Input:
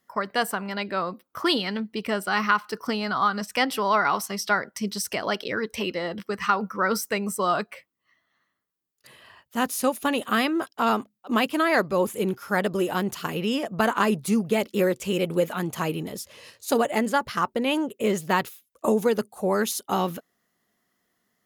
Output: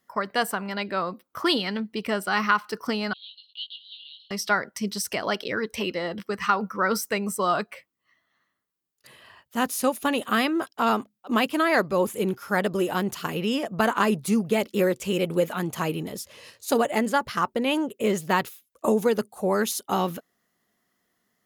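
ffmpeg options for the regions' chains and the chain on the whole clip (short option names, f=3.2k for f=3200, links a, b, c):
-filter_complex "[0:a]asettb=1/sr,asplit=3[a][b][c];[a]atrim=end=3.134[d];[b]atrim=start=3.13:end=4.31,asetpts=PTS-STARTPTS,afade=t=in:d=0.004:c=qsin,afade=t=out:st=1.176:d=0.004:c=qsin,aeval=exprs='if(lt(val(0),0),0.447*val(0),val(0))':c=same,asuperpass=centerf=3500:order=12:qfactor=2.5,asplit=2[e][f];[f]adelay=20,volume=-5.5dB[g];[e][g]amix=inputs=2:normalize=0,atrim=end_sample=52038[h];[c]atrim=start=4.306[i];[d][h]acrossfade=d=0.004:c1=hsin:c2=qsin[j];[j][i]acrossfade=d=0.004:c1=qsin:c2=hsin"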